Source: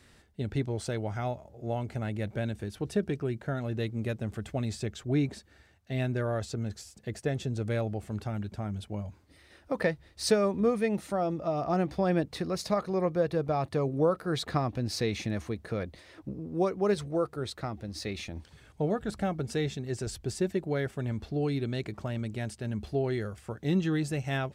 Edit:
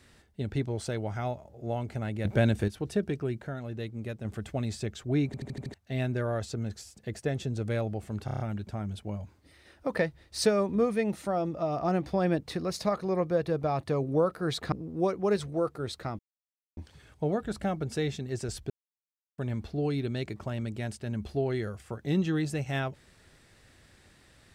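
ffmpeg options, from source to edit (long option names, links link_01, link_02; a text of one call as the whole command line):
ffmpeg -i in.wav -filter_complex "[0:a]asplit=21[link_01][link_02][link_03][link_04][link_05][link_06][link_07][link_08][link_09][link_10][link_11][link_12][link_13][link_14][link_15][link_16][link_17][link_18][link_19][link_20][link_21];[link_01]atrim=end=2.252[link_22];[link_02]atrim=start=2.248:end=2.682,asetpts=PTS-STARTPTS,volume=8.5dB[link_23];[link_03]atrim=start=2.678:end=3.482[link_24];[link_04]atrim=start=3.478:end=4.252,asetpts=PTS-STARTPTS,volume=-4.5dB[link_25];[link_05]atrim=start=4.248:end=5.342[link_26];[link_06]atrim=start=5.258:end=5.342[link_27];[link_07]atrim=start=5.258:end=5.342[link_28];[link_08]atrim=start=5.258:end=5.342[link_29];[link_09]atrim=start=5.258:end=5.342[link_30];[link_10]atrim=start=5.258:end=5.342[link_31];[link_11]atrim=start=5.738:end=8.282[link_32];[link_12]atrim=start=8.248:end=8.282[link_33];[link_13]atrim=start=8.248:end=8.282[link_34];[link_14]atrim=start=8.248:end=8.282[link_35];[link_15]atrim=start=8.248:end=8.282[link_36];[link_16]atrim=start=8.248:end=14.572[link_37];[link_17]atrim=start=16.298:end=17.77,asetpts=PTS-STARTPTS,afade=type=out:start_time=1.468:duration=0.004:curve=hsin[link_38];[link_18]atrim=start=17.77:end=18.35,asetpts=PTS-STARTPTS,volume=0[link_39];[link_19]atrim=start=18.35:end=20.28,asetpts=PTS-STARTPTS,afade=type=in:duration=0.004:curve=hsin,afade=type=out:start_time=1.926:duration=0.004:curve=hsin[link_40];[link_20]atrim=start=20.28:end=20.96,asetpts=PTS-STARTPTS,volume=0[link_41];[link_21]atrim=start=20.96,asetpts=PTS-STARTPTS,afade=type=in:duration=0.004:curve=hsin[link_42];[link_22][link_23]acrossfade=duration=0.004:curve1=hsin:curve2=hsin[link_43];[link_43][link_24]acrossfade=duration=0.004:curve1=hsin:curve2=hsin[link_44];[link_44][link_25]acrossfade=duration=0.004:curve1=hsin:curve2=hsin[link_45];[link_45][link_26]acrossfade=duration=0.004:curve1=hsin:curve2=hsin[link_46];[link_46][link_27]acrossfade=duration=0.004:curve1=hsin:curve2=hsin[link_47];[link_47][link_28]acrossfade=duration=0.004:curve1=hsin:curve2=hsin[link_48];[link_48][link_29]acrossfade=duration=0.004:curve1=hsin:curve2=hsin[link_49];[link_49][link_30]acrossfade=duration=0.004:curve1=hsin:curve2=hsin[link_50];[link_50][link_31]acrossfade=duration=0.004:curve1=hsin:curve2=hsin[link_51];[link_51][link_32]acrossfade=duration=0.004:curve1=hsin:curve2=hsin[link_52];[link_52][link_33]acrossfade=duration=0.004:curve1=hsin:curve2=hsin[link_53];[link_53][link_34]acrossfade=duration=0.004:curve1=hsin:curve2=hsin[link_54];[link_54][link_35]acrossfade=duration=0.004:curve1=hsin:curve2=hsin[link_55];[link_55][link_36]acrossfade=duration=0.004:curve1=hsin:curve2=hsin[link_56];[link_56][link_37]acrossfade=duration=0.004:curve1=hsin:curve2=hsin[link_57];[link_38][link_39][link_40][link_41][link_42]concat=n=5:v=0:a=1[link_58];[link_57][link_58]acrossfade=duration=0.004:curve1=hsin:curve2=hsin" out.wav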